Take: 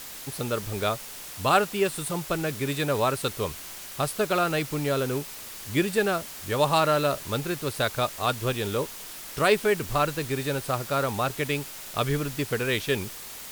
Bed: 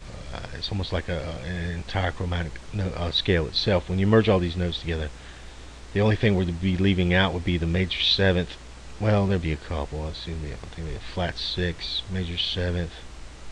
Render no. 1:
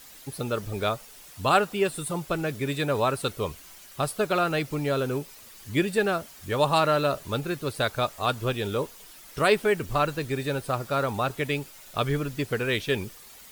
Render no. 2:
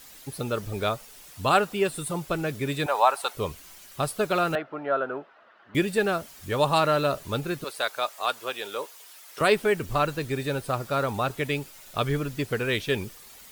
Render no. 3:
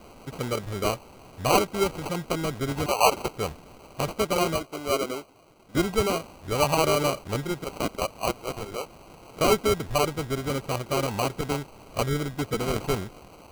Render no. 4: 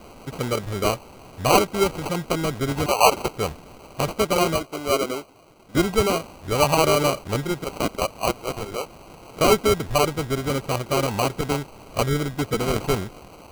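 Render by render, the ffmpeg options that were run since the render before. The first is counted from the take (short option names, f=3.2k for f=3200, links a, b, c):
-af "afftdn=nr=10:nf=-41"
-filter_complex "[0:a]asettb=1/sr,asplit=3[a][b][c];[a]atrim=end=2.864[d];[b]atrim=start=2.86:end=3.35,asetpts=PTS-STARTPTS,afade=t=in:d=0.004:c=qsin,afade=t=out:st=0.486:d=0.004:c=qsin,highpass=f=810:t=q:w=3.6[e];[c]atrim=start=3.346[f];[d][e]acrossfade=d=0.004:c1=hsin:c2=qsin[g];[g][f]acrossfade=d=0.004:c1=qsin:c2=hsin,asettb=1/sr,asplit=3[h][i][j];[h]atrim=end=4.554[k];[i]atrim=start=4.55:end=5.75,asetpts=PTS-STARTPTS,afade=t=in:d=0.004:c=qsin,afade=t=out:st=1.196:d=0.004:c=qsin,highpass=400,equalizer=f=450:t=q:w=4:g=-4,equalizer=f=660:t=q:w=4:g=8,equalizer=f=1.4k:t=q:w=4:g=8,equalizer=f=2.3k:t=q:w=4:g=-10,lowpass=f=2.4k:w=0.5412,lowpass=f=2.4k:w=1.3066[l];[j]atrim=start=5.746[m];[k][l]acrossfade=d=0.004:c1=hsin:c2=qsin[n];[n][m]acrossfade=d=0.004:c1=qsin:c2=hsin,asettb=1/sr,asplit=3[o][p][q];[o]atrim=end=7.644[r];[p]atrim=start=7.64:end=9.41,asetpts=PTS-STARTPTS,afade=t=in:d=0.004:c=qsin,afade=t=out:st=1.766:d=0.004:c=qsin,highpass=590[s];[q]atrim=start=9.406[t];[r][s]acrossfade=d=0.004:c1=hsin:c2=qsin[u];[u][t]acrossfade=d=0.004:c1=qsin:c2=hsin"
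-af "acrusher=samples=25:mix=1:aa=0.000001"
-af "volume=4dB"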